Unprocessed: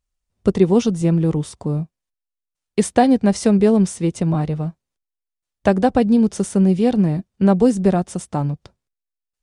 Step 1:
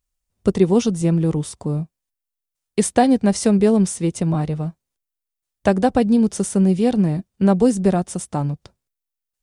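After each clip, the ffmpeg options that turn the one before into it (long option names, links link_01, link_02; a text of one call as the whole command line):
ffmpeg -i in.wav -af "highshelf=frequency=8500:gain=10,volume=-1dB" out.wav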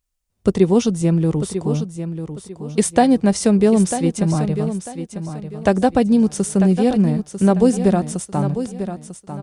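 ffmpeg -i in.wav -af "aecho=1:1:946|1892|2838:0.316|0.0917|0.0266,volume=1dB" out.wav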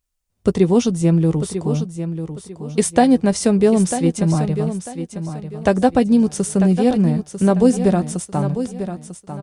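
ffmpeg -i in.wav -filter_complex "[0:a]asplit=2[link_01][link_02];[link_02]adelay=12,volume=-13dB[link_03];[link_01][link_03]amix=inputs=2:normalize=0" out.wav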